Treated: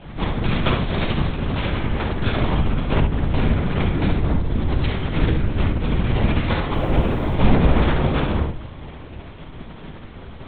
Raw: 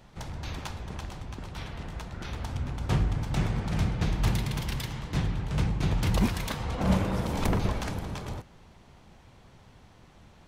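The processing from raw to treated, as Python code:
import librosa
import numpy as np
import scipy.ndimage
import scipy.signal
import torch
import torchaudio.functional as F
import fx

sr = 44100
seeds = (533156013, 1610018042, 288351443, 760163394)

y = fx.tracing_dist(x, sr, depth_ms=0.34)
y = fx.rider(y, sr, range_db=4, speed_s=0.5)
y = fx.resample_bad(y, sr, factor=8, down='none', up='zero_stuff', at=(0.78, 1.29))
y = fx.peak_eq(y, sr, hz=2700.0, db=-11.5, octaves=1.7, at=(4.16, 4.83))
y = fx.room_shoebox(y, sr, seeds[0], volume_m3=36.0, walls='mixed', distance_m=1.6)
y = fx.lpc_vocoder(y, sr, seeds[1], excitation='whisper', order=8)
y = fx.quant_dither(y, sr, seeds[2], bits=10, dither='none', at=(6.73, 7.35))
y = fx.low_shelf(y, sr, hz=160.0, db=-4.0)
y = fx.room_early_taps(y, sr, ms=(57, 70), db=(-10.5, -8.5))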